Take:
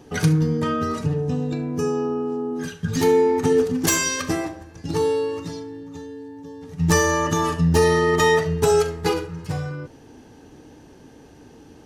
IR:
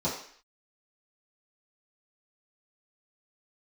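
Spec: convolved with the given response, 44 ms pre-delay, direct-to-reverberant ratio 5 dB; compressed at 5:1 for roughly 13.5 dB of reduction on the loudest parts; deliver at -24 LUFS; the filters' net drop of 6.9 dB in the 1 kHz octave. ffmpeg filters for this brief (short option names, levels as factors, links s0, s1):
-filter_complex "[0:a]equalizer=f=1000:t=o:g=-8.5,acompressor=threshold=0.0316:ratio=5,asplit=2[s0][s1];[1:a]atrim=start_sample=2205,adelay=44[s2];[s1][s2]afir=irnorm=-1:irlink=0,volume=0.2[s3];[s0][s3]amix=inputs=2:normalize=0,volume=1.78"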